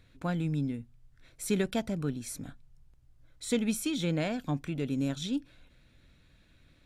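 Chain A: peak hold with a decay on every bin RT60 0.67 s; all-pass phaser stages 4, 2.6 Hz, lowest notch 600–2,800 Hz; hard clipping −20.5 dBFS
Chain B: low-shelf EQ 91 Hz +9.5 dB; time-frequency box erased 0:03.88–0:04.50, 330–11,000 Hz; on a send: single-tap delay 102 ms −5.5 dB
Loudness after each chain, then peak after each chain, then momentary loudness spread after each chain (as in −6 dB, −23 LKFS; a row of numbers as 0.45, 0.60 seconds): −32.5, −30.5 LKFS; −20.5, −14.0 dBFS; 13, 13 LU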